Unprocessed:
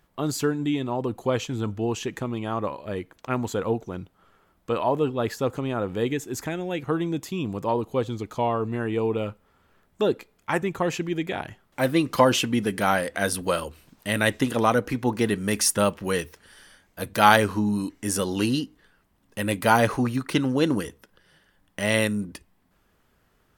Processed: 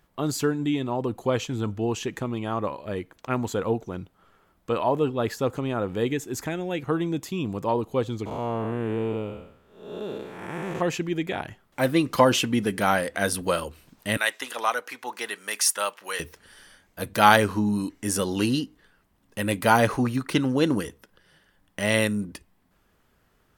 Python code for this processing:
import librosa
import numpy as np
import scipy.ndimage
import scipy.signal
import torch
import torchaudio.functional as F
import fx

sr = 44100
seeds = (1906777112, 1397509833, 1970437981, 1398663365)

y = fx.spec_blur(x, sr, span_ms=317.0, at=(8.25, 10.8), fade=0.02)
y = fx.highpass(y, sr, hz=880.0, slope=12, at=(14.17, 16.2))